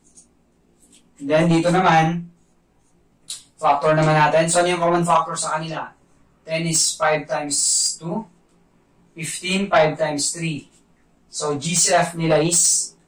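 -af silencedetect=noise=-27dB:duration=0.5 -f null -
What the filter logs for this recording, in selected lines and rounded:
silence_start: 0.00
silence_end: 1.22 | silence_duration: 1.22
silence_start: 2.21
silence_end: 3.30 | silence_duration: 1.09
silence_start: 5.87
silence_end: 6.49 | silence_duration: 0.62
silence_start: 8.21
silence_end: 9.19 | silence_duration: 0.97
silence_start: 10.59
silence_end: 11.35 | silence_duration: 0.76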